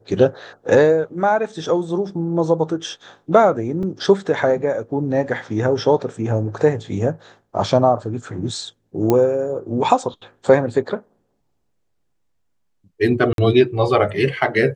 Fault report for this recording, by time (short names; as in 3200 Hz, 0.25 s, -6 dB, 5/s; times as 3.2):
3.83 gap 2.7 ms
9.1 pop -5 dBFS
13.33–13.38 gap 52 ms